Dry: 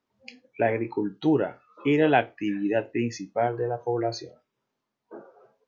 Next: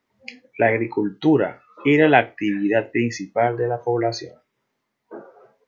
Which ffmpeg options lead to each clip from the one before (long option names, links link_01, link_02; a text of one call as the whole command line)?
ffmpeg -i in.wav -af "equalizer=frequency=2000:width=4.1:gain=8,volume=5.5dB" out.wav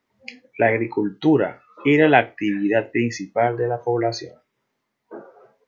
ffmpeg -i in.wav -af anull out.wav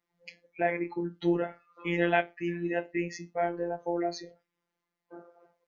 ffmpeg -i in.wav -af "afftfilt=real='hypot(re,im)*cos(PI*b)':imag='0':win_size=1024:overlap=0.75,volume=-7dB" out.wav